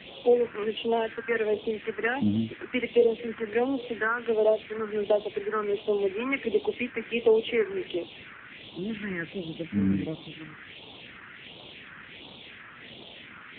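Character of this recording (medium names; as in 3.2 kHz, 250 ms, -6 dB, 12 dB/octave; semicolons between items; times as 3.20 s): a quantiser's noise floor 6-bit, dither triangular; phasing stages 4, 1.4 Hz, lowest notch 640–1700 Hz; AMR-NB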